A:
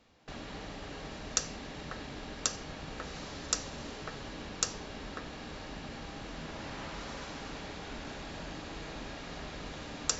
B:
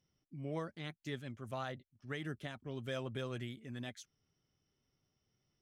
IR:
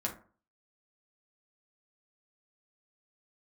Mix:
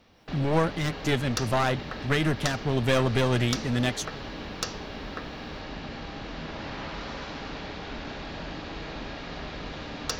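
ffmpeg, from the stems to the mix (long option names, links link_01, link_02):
-filter_complex "[0:a]lowpass=frequency=5100:width=0.5412,lowpass=frequency=5100:width=1.3066,volume=-1dB[link_01];[1:a]dynaudnorm=framelen=130:gausssize=3:maxgain=10.5dB,volume=2.5dB[link_02];[link_01][link_02]amix=inputs=2:normalize=0,acontrast=68,aeval=exprs='clip(val(0),-1,0.0631)':channel_layout=same"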